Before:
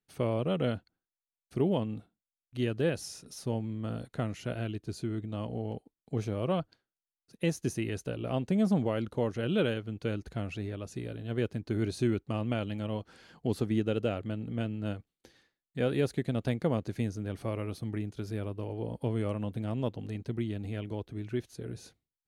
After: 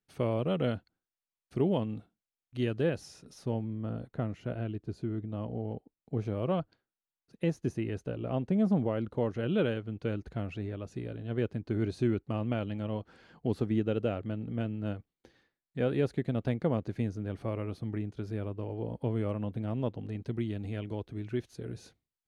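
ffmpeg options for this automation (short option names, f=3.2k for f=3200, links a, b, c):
-af "asetnsamples=n=441:p=0,asendcmd='2.83 lowpass f 2400;3.64 lowpass f 1100;6.25 lowpass f 2200;7.44 lowpass f 1400;9.13 lowpass f 2200;20.21 lowpass f 5300',lowpass=f=4.9k:p=1"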